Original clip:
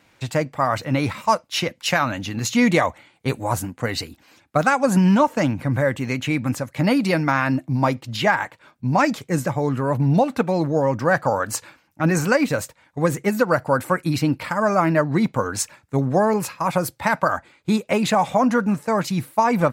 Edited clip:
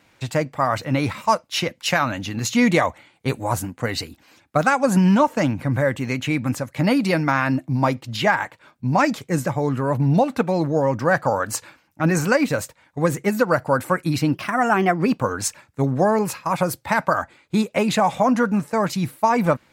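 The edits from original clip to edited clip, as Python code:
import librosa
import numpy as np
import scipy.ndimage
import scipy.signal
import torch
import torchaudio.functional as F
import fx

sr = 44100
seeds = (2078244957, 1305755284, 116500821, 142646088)

y = fx.edit(x, sr, fx.speed_span(start_s=14.34, length_s=1.01, speed=1.17), tone=tone)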